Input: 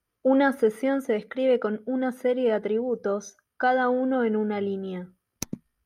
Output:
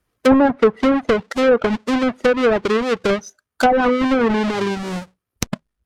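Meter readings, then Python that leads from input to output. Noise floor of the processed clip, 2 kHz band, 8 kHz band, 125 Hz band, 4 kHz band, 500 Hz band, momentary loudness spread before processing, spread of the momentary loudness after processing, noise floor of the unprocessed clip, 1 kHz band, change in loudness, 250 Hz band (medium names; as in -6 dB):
-81 dBFS, +8.0 dB, +7.5 dB, no reading, +13.5 dB, +7.0 dB, 13 LU, 12 LU, -82 dBFS, +8.0 dB, +7.5 dB, +8.5 dB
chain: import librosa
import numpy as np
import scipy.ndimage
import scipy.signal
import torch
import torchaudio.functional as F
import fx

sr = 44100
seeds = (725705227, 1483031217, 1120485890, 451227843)

y = fx.halfwave_hold(x, sr)
y = fx.env_lowpass_down(y, sr, base_hz=1100.0, full_db=-14.5)
y = fx.dereverb_blind(y, sr, rt60_s=0.57)
y = y * 10.0 ** (5.5 / 20.0)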